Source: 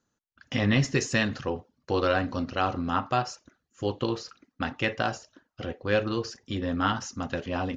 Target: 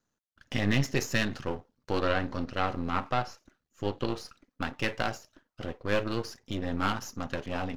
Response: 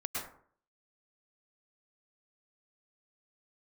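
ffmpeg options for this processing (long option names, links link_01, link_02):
-filter_complex "[0:a]aeval=exprs='if(lt(val(0),0),0.251*val(0),val(0))':channel_layout=same,asettb=1/sr,asplit=3[link_01][link_02][link_03];[link_01]atrim=end=1.994[link_04];[link_02]atrim=start=1.99:end=4.1,asetpts=PTS-STARTPTS,afade=type=in:duration=0.004:curve=qsin,afade=type=out:start_time=2.106:duration=0.004:curve=qsin,acrossover=split=5100[link_05][link_06];[link_06]acompressor=threshold=-59dB:ratio=4:attack=1:release=60[link_07];[link_05][link_07]amix=inputs=2:normalize=0[link_08];[link_03]atrim=start=4.096[link_09];[link_04][link_08]acrossfade=duration=0.004:curve1=hsin:curve2=qsin[link_10];[link_10][link_09]acrossfade=duration=0.004:curve1=qsin:curve2=hsin"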